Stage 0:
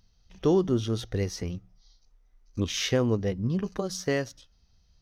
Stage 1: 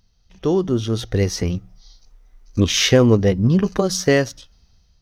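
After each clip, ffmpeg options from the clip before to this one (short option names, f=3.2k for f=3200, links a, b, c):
-filter_complex "[0:a]dynaudnorm=f=440:g=5:m=11.5dB,asplit=2[a][b];[b]asoftclip=type=hard:threshold=-12.5dB,volume=-9dB[c];[a][c]amix=inputs=2:normalize=0"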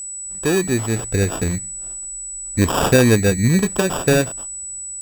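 -af "acrusher=samples=21:mix=1:aa=0.000001,aeval=exprs='val(0)+0.0398*sin(2*PI*7900*n/s)':c=same"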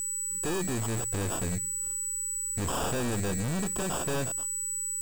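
-af "aeval=exprs='(tanh(31.6*val(0)+0.55)-tanh(0.55))/31.6':c=same,volume=1dB"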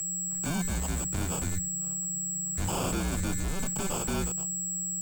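-filter_complex "[0:a]acrossover=split=230|1100|2000[a][b][c][d];[c]acompressor=mode=upward:threshold=-56dB:ratio=2.5[e];[a][b][e][d]amix=inputs=4:normalize=0,afreqshift=-180"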